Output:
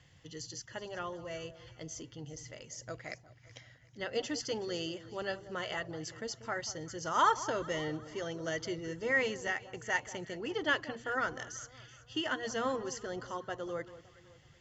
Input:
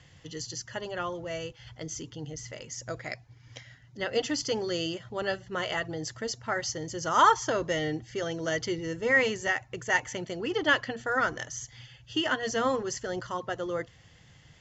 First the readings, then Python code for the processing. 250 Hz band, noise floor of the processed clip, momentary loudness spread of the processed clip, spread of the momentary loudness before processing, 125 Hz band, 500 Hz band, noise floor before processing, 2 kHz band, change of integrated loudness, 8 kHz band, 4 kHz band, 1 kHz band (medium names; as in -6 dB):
-6.5 dB, -61 dBFS, 15 LU, 15 LU, -6.5 dB, -6.5 dB, -57 dBFS, -6.5 dB, -6.5 dB, no reading, -6.5 dB, -6.5 dB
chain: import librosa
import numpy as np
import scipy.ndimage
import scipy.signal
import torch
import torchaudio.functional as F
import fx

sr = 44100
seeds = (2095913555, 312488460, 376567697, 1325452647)

y = fx.echo_alternate(x, sr, ms=188, hz=1200.0, feedback_pct=60, wet_db=-14.0)
y = F.gain(torch.from_numpy(y), -6.5).numpy()